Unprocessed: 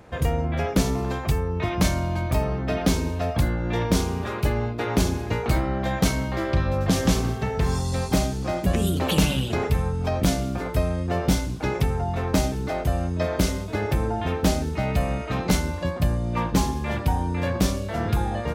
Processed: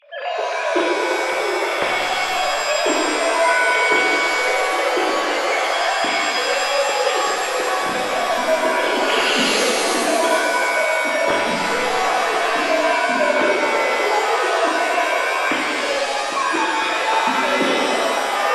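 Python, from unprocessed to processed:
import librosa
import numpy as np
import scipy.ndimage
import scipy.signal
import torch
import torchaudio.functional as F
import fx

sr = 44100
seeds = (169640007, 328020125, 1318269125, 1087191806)

y = fx.sine_speech(x, sr)
y = fx.high_shelf(y, sr, hz=2300.0, db=8.5)
y = fx.rev_shimmer(y, sr, seeds[0], rt60_s=2.3, semitones=7, shimmer_db=-2, drr_db=-3.5)
y = F.gain(torch.from_numpy(y), -4.5).numpy()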